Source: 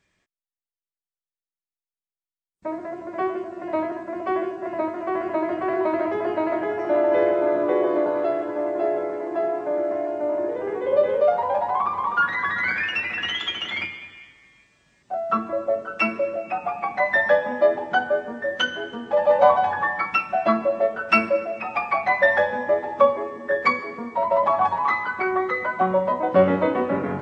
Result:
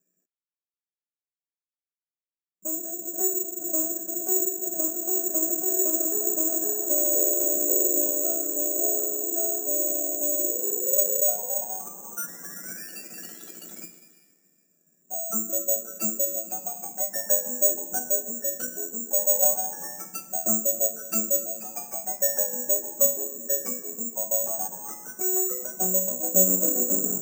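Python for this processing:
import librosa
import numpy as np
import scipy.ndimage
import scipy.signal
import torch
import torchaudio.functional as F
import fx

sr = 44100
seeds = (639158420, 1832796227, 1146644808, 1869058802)

p1 = scipy.signal.sosfilt(scipy.signal.ellip(4, 1.0, 40, 160.0, 'highpass', fs=sr, output='sos'), x)
p2 = fx.rider(p1, sr, range_db=3, speed_s=0.5)
p3 = p1 + F.gain(torch.from_numpy(p2), -2.0).numpy()
p4 = np.convolve(p3, np.full(42, 1.0 / 42))[:len(p3)]
p5 = (np.kron(p4[::6], np.eye(6)[0]) * 6)[:len(p4)]
y = F.gain(torch.from_numpy(p5), -10.5).numpy()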